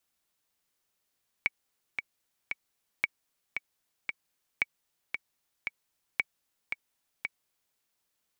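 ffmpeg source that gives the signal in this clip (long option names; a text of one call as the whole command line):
ffmpeg -f lavfi -i "aevalsrc='pow(10,(-12-6.5*gte(mod(t,3*60/114),60/114))/20)*sin(2*PI*2260*mod(t,60/114))*exp(-6.91*mod(t,60/114)/0.03)':duration=6.31:sample_rate=44100" out.wav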